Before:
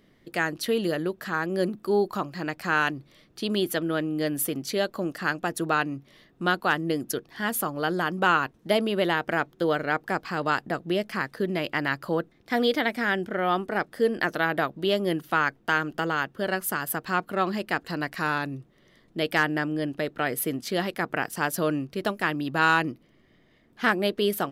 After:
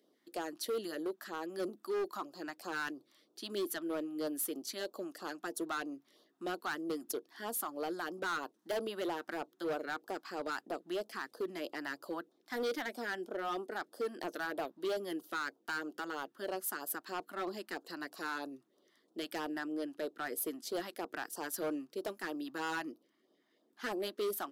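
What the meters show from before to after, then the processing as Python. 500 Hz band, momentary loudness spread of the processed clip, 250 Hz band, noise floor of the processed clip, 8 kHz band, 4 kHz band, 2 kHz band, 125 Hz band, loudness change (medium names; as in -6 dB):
-11.0 dB, 6 LU, -12.5 dB, -75 dBFS, -7.5 dB, -12.5 dB, -15.0 dB, -24.5 dB, -12.5 dB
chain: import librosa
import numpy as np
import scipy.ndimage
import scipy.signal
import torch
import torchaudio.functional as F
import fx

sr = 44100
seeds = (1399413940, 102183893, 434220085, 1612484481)

y = scipy.signal.sosfilt(scipy.signal.butter(4, 300.0, 'highpass', fs=sr, output='sos'), x)
y = fx.peak_eq(y, sr, hz=2400.0, db=-8.5, octaves=0.93)
y = fx.filter_lfo_notch(y, sr, shape='sine', hz=3.1, low_hz=440.0, high_hz=2100.0, q=0.83)
y = np.clip(10.0 ** (25.5 / 20.0) * y, -1.0, 1.0) / 10.0 ** (25.5 / 20.0)
y = F.gain(torch.from_numpy(y), -6.0).numpy()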